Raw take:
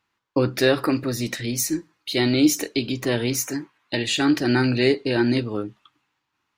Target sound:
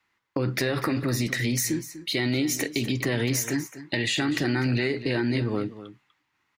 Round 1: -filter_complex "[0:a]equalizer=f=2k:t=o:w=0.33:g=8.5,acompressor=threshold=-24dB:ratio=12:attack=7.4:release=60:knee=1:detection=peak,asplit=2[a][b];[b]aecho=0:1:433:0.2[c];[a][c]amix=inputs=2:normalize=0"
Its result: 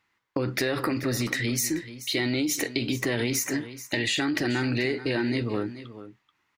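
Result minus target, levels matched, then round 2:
echo 0.187 s late; 125 Hz band -3.0 dB
-filter_complex "[0:a]equalizer=f=2k:t=o:w=0.33:g=8.5,acompressor=threshold=-24dB:ratio=12:attack=7.4:release=60:knee=1:detection=peak,adynamicequalizer=threshold=0.00562:dfrequency=150:dqfactor=1.9:tfrequency=150:tqfactor=1.9:attack=5:release=100:ratio=0.4:range=3:mode=boostabove:tftype=bell,asplit=2[a][b];[b]aecho=0:1:246:0.2[c];[a][c]amix=inputs=2:normalize=0"

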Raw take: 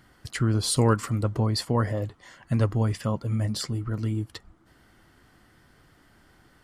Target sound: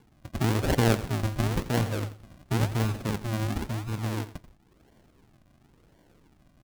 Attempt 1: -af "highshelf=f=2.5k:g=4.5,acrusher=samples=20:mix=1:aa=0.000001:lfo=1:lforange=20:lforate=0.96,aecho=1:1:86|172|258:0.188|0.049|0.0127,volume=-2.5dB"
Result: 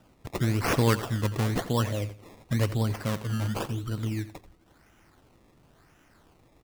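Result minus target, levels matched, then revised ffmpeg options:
decimation with a swept rate: distortion -7 dB
-af "highshelf=f=2.5k:g=4.5,acrusher=samples=68:mix=1:aa=0.000001:lfo=1:lforange=68:lforate=0.96,aecho=1:1:86|172|258:0.188|0.049|0.0127,volume=-2.5dB"

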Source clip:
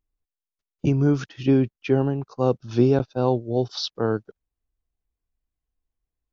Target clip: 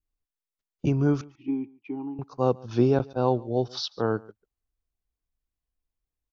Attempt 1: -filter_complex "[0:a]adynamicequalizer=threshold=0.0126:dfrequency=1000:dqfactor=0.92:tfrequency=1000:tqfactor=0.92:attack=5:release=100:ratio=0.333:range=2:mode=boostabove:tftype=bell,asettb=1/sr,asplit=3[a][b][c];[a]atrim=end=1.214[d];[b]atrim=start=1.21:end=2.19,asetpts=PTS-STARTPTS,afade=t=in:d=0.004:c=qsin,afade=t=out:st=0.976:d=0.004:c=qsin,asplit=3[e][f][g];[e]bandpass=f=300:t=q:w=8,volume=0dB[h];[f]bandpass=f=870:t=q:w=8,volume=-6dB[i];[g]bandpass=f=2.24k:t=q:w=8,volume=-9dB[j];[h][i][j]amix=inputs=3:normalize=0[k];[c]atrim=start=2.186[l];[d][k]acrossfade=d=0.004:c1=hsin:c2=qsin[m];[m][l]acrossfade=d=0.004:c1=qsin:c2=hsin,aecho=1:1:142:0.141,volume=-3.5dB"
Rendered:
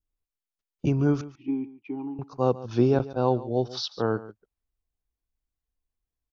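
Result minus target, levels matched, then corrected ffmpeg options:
echo-to-direct +7 dB
-filter_complex "[0:a]adynamicequalizer=threshold=0.0126:dfrequency=1000:dqfactor=0.92:tfrequency=1000:tqfactor=0.92:attack=5:release=100:ratio=0.333:range=2:mode=boostabove:tftype=bell,asettb=1/sr,asplit=3[a][b][c];[a]atrim=end=1.214[d];[b]atrim=start=1.21:end=2.19,asetpts=PTS-STARTPTS,afade=t=in:d=0.004:c=qsin,afade=t=out:st=0.976:d=0.004:c=qsin,asplit=3[e][f][g];[e]bandpass=f=300:t=q:w=8,volume=0dB[h];[f]bandpass=f=870:t=q:w=8,volume=-6dB[i];[g]bandpass=f=2.24k:t=q:w=8,volume=-9dB[j];[h][i][j]amix=inputs=3:normalize=0[k];[c]atrim=start=2.186[l];[d][k]acrossfade=d=0.004:c1=hsin:c2=qsin[m];[m][l]acrossfade=d=0.004:c1=qsin:c2=hsin,aecho=1:1:142:0.0631,volume=-3.5dB"

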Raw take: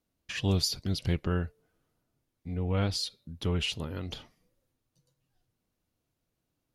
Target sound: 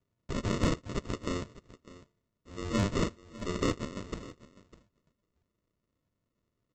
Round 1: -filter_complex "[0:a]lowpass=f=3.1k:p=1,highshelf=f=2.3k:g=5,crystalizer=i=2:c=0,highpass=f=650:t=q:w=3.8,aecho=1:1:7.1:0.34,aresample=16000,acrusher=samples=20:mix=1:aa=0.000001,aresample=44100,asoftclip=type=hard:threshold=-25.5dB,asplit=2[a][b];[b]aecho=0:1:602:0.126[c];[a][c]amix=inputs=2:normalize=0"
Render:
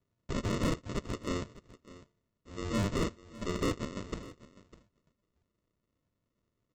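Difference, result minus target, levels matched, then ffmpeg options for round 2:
hard clip: distortion +12 dB
-filter_complex "[0:a]lowpass=f=3.1k:p=1,highshelf=f=2.3k:g=5,crystalizer=i=2:c=0,highpass=f=650:t=q:w=3.8,aecho=1:1:7.1:0.34,aresample=16000,acrusher=samples=20:mix=1:aa=0.000001,aresample=44100,asoftclip=type=hard:threshold=-19dB,asplit=2[a][b];[b]aecho=0:1:602:0.126[c];[a][c]amix=inputs=2:normalize=0"

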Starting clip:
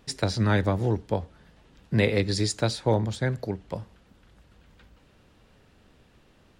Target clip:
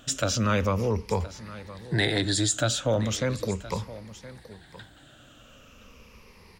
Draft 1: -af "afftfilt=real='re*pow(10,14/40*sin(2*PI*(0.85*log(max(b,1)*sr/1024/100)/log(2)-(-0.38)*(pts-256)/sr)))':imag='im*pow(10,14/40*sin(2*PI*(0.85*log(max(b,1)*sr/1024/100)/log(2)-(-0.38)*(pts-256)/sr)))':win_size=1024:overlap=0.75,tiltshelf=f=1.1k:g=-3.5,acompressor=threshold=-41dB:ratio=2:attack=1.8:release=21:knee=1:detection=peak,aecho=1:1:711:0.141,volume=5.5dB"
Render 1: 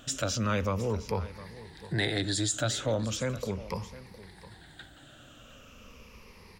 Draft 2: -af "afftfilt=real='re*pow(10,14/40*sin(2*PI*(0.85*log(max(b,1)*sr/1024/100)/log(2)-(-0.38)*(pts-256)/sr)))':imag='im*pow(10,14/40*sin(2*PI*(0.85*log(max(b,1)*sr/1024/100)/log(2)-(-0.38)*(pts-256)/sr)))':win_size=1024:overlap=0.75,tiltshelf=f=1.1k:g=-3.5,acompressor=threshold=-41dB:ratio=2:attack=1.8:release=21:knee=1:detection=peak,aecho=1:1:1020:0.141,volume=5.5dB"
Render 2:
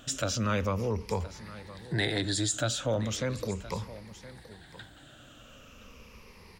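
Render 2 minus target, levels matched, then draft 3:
compressor: peak gain reduction +4.5 dB
-af "afftfilt=real='re*pow(10,14/40*sin(2*PI*(0.85*log(max(b,1)*sr/1024/100)/log(2)-(-0.38)*(pts-256)/sr)))':imag='im*pow(10,14/40*sin(2*PI*(0.85*log(max(b,1)*sr/1024/100)/log(2)-(-0.38)*(pts-256)/sr)))':win_size=1024:overlap=0.75,tiltshelf=f=1.1k:g=-3.5,acompressor=threshold=-32dB:ratio=2:attack=1.8:release=21:knee=1:detection=peak,aecho=1:1:1020:0.141,volume=5.5dB"

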